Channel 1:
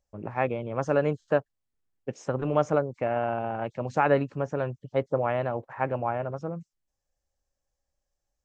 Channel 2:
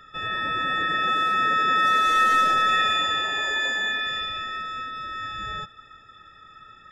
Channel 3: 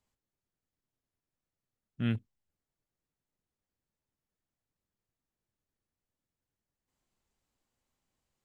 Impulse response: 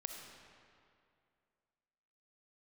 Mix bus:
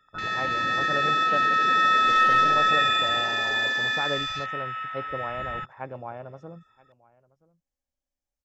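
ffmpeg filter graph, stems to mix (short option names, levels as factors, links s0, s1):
-filter_complex "[0:a]volume=0.376,asplit=2[s0][s1];[s1]volume=0.0668[s2];[1:a]afwtdn=0.02,volume=1[s3];[2:a]asplit=3[s4][s5][s6];[s4]bandpass=f=270:t=q:w=8,volume=1[s7];[s5]bandpass=f=2290:t=q:w=8,volume=0.501[s8];[s6]bandpass=f=3010:t=q:w=8,volume=0.355[s9];[s7][s8][s9]amix=inputs=3:normalize=0,volume=0.501[s10];[s2]aecho=0:1:977:1[s11];[s0][s3][s10][s11]amix=inputs=4:normalize=0"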